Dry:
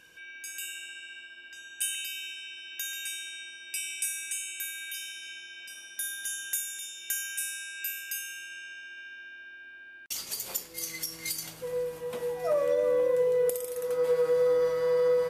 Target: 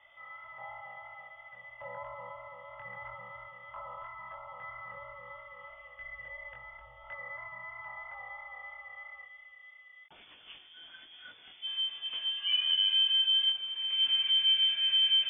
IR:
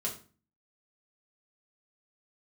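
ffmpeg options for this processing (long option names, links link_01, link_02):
-filter_complex "[0:a]asettb=1/sr,asplit=3[link_01][link_02][link_03];[link_01]atrim=end=9.244[link_04];[link_02]atrim=start=9.24:end=11.66,asetpts=PTS-STARTPTS,afade=type=in:duration=0.004:curve=qsin,afade=type=out:start_time=2.416:duration=0.004:curve=qsin,equalizer=frequency=2600:width_type=o:width=1.2:gain=-9[link_05];[link_03]atrim=start=11.656[link_06];[link_04][link_05]acrossfade=duration=0.004:curve1=hsin:curve2=qsin[link_07];[link_07][link_06]acrossfade=duration=0.004:curve1=qsin:curve2=hsin,flanger=delay=20:depth=2.2:speed=3,lowpass=frequency=3100:width_type=q:width=0.5098,lowpass=frequency=3100:width_type=q:width=0.6013,lowpass=frequency=3100:width_type=q:width=0.9,lowpass=frequency=3100:width_type=q:width=2.563,afreqshift=-3600"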